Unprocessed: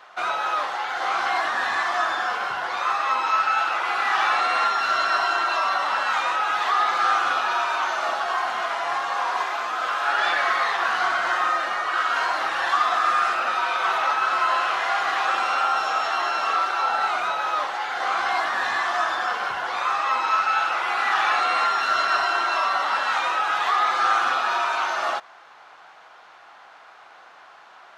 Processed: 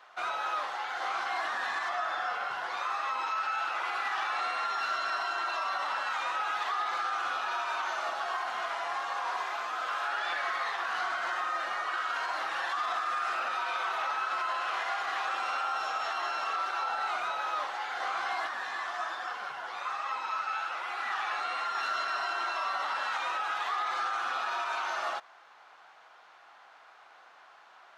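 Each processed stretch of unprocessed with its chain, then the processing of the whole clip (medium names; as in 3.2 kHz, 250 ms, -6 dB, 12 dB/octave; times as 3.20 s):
1.89–2.51 s: tone controls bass -1 dB, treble -5 dB + comb 1.5 ms, depth 31%
18.47–21.75 s: high-pass 89 Hz + flange 1.2 Hz, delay 2.1 ms, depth 8.7 ms, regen +50%
whole clip: bass shelf 280 Hz -6 dB; peak limiter -16 dBFS; trim -7.5 dB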